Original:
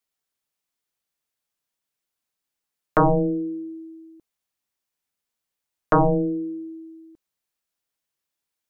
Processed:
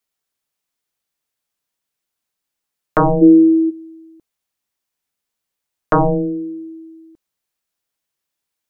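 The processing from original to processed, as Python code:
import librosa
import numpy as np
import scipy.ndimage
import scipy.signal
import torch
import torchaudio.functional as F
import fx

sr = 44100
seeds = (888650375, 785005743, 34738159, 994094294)

y = fx.small_body(x, sr, hz=(350.0, 1300.0), ring_ms=45, db=18, at=(3.21, 3.69), fade=0.02)
y = y * 10.0 ** (3.5 / 20.0)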